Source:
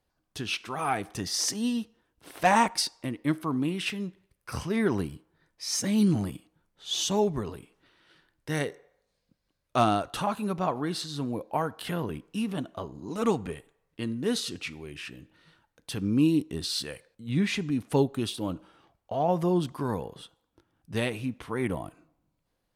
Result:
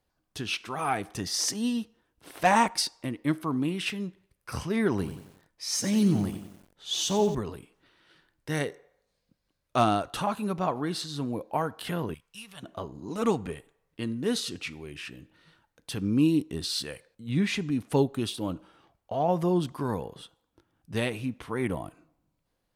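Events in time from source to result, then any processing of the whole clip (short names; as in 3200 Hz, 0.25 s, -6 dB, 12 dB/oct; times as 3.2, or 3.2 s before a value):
4.92–7.35 lo-fi delay 91 ms, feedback 55%, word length 8-bit, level -11 dB
12.14–12.63 passive tone stack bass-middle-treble 10-0-10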